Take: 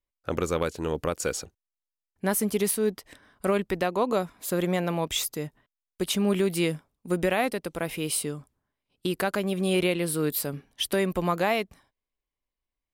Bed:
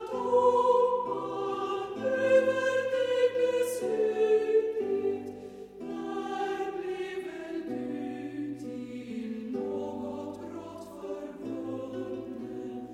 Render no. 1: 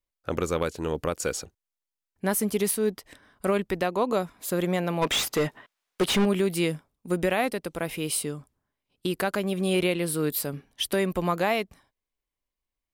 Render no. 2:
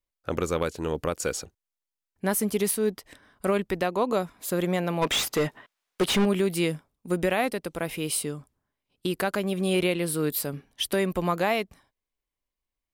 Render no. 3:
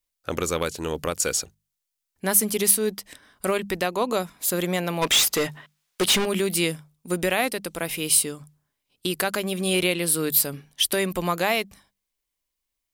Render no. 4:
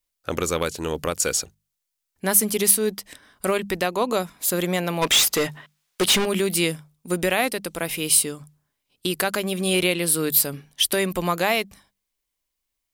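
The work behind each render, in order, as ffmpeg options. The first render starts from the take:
-filter_complex "[0:a]asplit=3[a][b][c];[a]afade=t=out:st=5.01:d=0.02[d];[b]asplit=2[e][f];[f]highpass=f=720:p=1,volume=26dB,asoftclip=type=tanh:threshold=-14dB[g];[e][g]amix=inputs=2:normalize=0,lowpass=f=2.7k:p=1,volume=-6dB,afade=t=in:st=5.01:d=0.02,afade=t=out:st=6.24:d=0.02[h];[c]afade=t=in:st=6.24:d=0.02[i];[d][h][i]amix=inputs=3:normalize=0"
-af anull
-af "highshelf=f=2.5k:g=10.5,bandreject=f=50:t=h:w=6,bandreject=f=100:t=h:w=6,bandreject=f=150:t=h:w=6,bandreject=f=200:t=h:w=6"
-af "volume=1.5dB"

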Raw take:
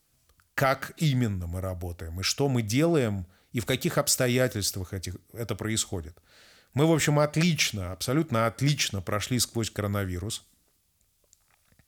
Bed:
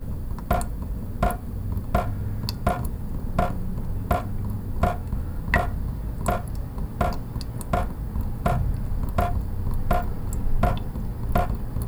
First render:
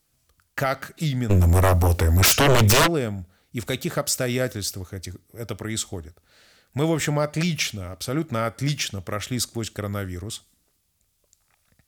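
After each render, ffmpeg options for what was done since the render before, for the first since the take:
-filter_complex "[0:a]asplit=3[a][b][c];[a]afade=t=out:st=1.29:d=0.02[d];[b]aeval=exprs='0.237*sin(PI/2*6.31*val(0)/0.237)':c=same,afade=t=in:st=1.29:d=0.02,afade=t=out:st=2.86:d=0.02[e];[c]afade=t=in:st=2.86:d=0.02[f];[d][e][f]amix=inputs=3:normalize=0"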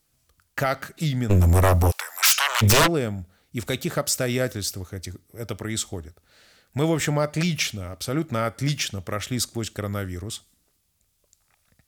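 -filter_complex "[0:a]asplit=3[a][b][c];[a]afade=t=out:st=1.9:d=0.02[d];[b]highpass=f=960:w=0.5412,highpass=f=960:w=1.3066,afade=t=in:st=1.9:d=0.02,afade=t=out:st=2.61:d=0.02[e];[c]afade=t=in:st=2.61:d=0.02[f];[d][e][f]amix=inputs=3:normalize=0"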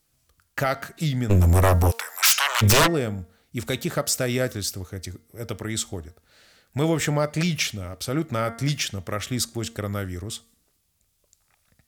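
-af "bandreject=f=230.3:t=h:w=4,bandreject=f=460.6:t=h:w=4,bandreject=f=690.9:t=h:w=4,bandreject=f=921.2:t=h:w=4,bandreject=f=1.1515k:t=h:w=4,bandreject=f=1.3818k:t=h:w=4,bandreject=f=1.6121k:t=h:w=4,bandreject=f=1.8424k:t=h:w=4,bandreject=f=2.0727k:t=h:w=4"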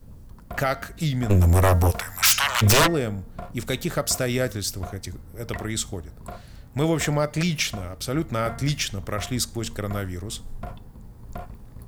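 -filter_complex "[1:a]volume=-14dB[a];[0:a][a]amix=inputs=2:normalize=0"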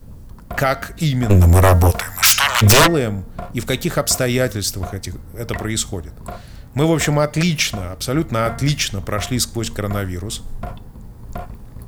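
-af "volume=6.5dB,alimiter=limit=-2dB:level=0:latency=1"

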